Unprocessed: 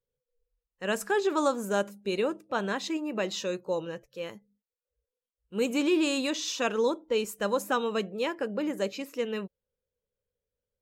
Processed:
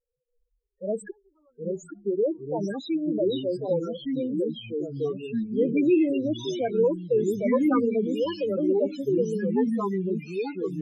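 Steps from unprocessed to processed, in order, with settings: 1.10–2.04 s: inverted gate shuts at -25 dBFS, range -41 dB; loudest bins only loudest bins 4; on a send: feedback echo behind a high-pass 849 ms, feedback 71%, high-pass 5.1 kHz, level -12 dB; on the sum: ever faster or slower copies 617 ms, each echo -3 st, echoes 3; trim +5 dB

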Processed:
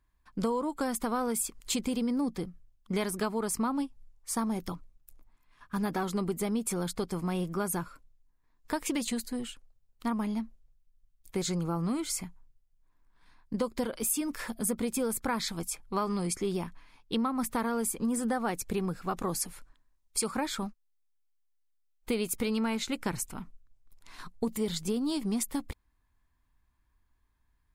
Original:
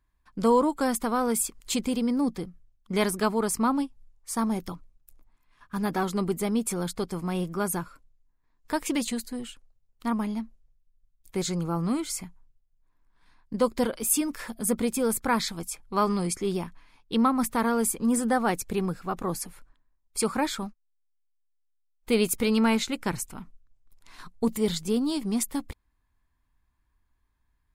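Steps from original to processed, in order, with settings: 19.07–20.31 s: peaking EQ 6.8 kHz +5 dB 2.4 oct; compression 6:1, threshold -27 dBFS, peak gain reduction 10.5 dB

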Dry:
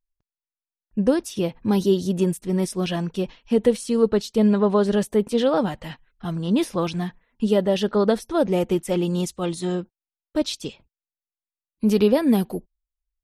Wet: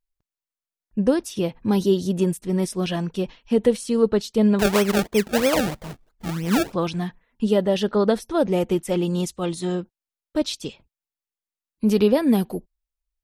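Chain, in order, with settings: 4.59–6.73 s: decimation with a swept rate 30×, swing 100% 3.1 Hz

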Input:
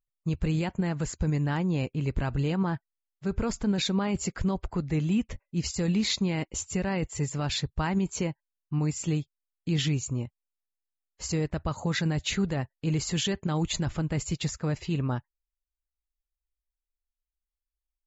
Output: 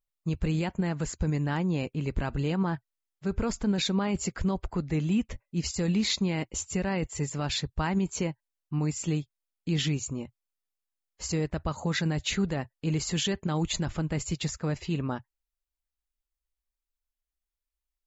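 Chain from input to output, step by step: peaking EQ 120 Hz -12.5 dB 0.21 oct

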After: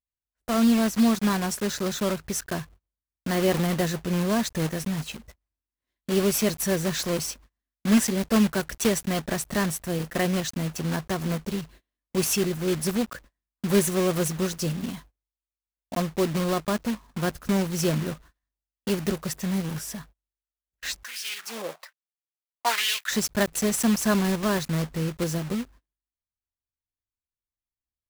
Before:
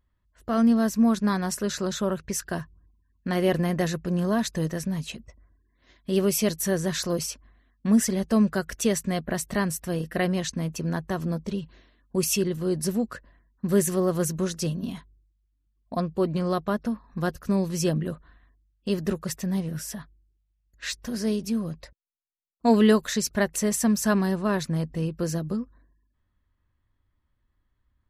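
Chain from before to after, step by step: block-companded coder 3-bit; gate -47 dBFS, range -28 dB; 21.03–23.11 s: LFO high-pass sine 1.2 Hz 500–2900 Hz

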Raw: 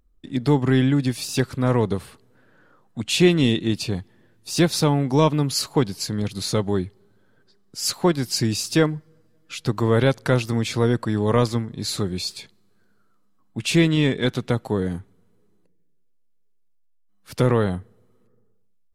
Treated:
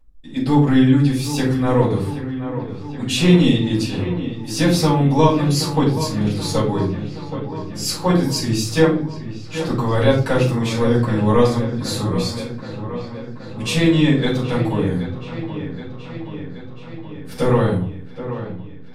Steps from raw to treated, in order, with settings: feedback echo behind a low-pass 775 ms, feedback 67%, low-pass 2.9 kHz, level -11 dB; simulated room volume 250 m³, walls furnished, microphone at 5.7 m; trim -7.5 dB

